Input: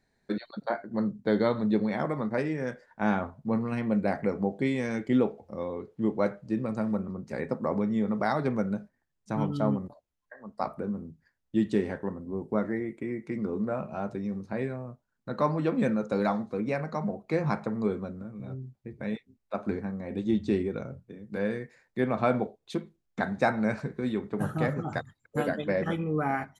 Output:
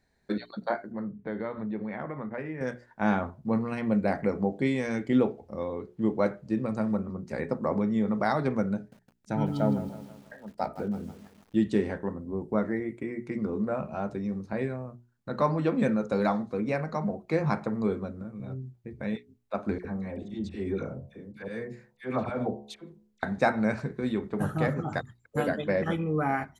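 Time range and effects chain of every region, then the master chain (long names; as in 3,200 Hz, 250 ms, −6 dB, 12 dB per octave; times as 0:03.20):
0:00.92–0:02.61: high shelf with overshoot 3,300 Hz −13.5 dB, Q 1.5 + downward compressor 2 to 1, threshold −38 dBFS
0:08.76–0:11.66: Butterworth band-reject 1,100 Hz, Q 4.3 + feedback echo at a low word length 160 ms, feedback 55%, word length 8 bits, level −13 dB
0:19.78–0:23.23: volume swells 144 ms + hum removal 70.59 Hz, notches 15 + all-pass dispersion lows, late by 67 ms, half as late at 1,200 Hz
whole clip: parametric band 62 Hz +7 dB 0.72 octaves; mains-hum notches 60/120/180/240/300/360/420 Hz; level +1 dB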